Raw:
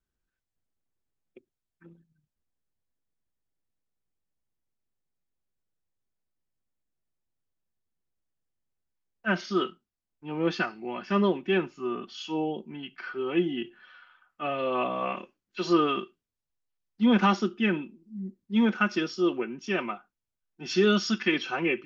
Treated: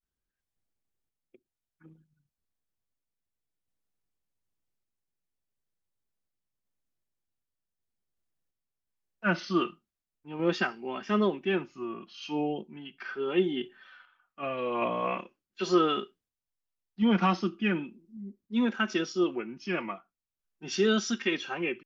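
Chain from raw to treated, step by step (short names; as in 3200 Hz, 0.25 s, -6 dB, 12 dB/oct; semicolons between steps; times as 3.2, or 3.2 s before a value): random-step tremolo 2.7 Hz; vibrato 0.39 Hz 96 cents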